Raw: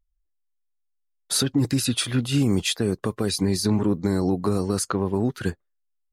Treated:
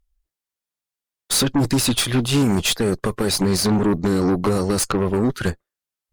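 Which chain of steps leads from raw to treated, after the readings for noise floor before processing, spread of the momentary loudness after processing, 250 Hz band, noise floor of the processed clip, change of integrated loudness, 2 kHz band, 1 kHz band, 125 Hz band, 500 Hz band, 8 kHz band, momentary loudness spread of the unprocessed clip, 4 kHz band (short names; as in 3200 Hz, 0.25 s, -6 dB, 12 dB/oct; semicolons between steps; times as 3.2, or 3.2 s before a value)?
-74 dBFS, 4 LU, +3.5 dB, under -85 dBFS, +4.0 dB, +6.0 dB, +6.5 dB, +2.5 dB, +5.0 dB, +5.0 dB, 4 LU, +5.0 dB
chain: added harmonics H 5 -13 dB, 8 -15 dB, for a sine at -10 dBFS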